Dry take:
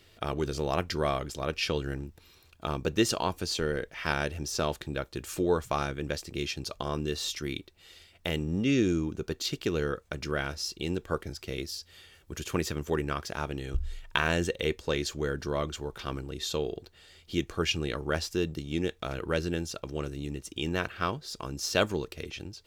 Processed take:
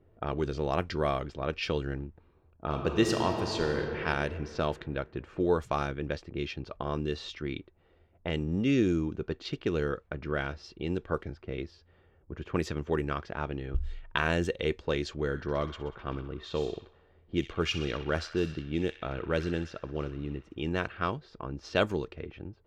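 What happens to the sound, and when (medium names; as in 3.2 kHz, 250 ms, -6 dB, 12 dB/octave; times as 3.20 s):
2.64–4.02 s: reverb throw, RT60 3 s, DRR 3 dB
15.13–20.63 s: feedback echo behind a high-pass 63 ms, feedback 77%, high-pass 1.4 kHz, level -11 dB
whole clip: level-controlled noise filter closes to 710 Hz, open at -24 dBFS; treble shelf 4.9 kHz -11.5 dB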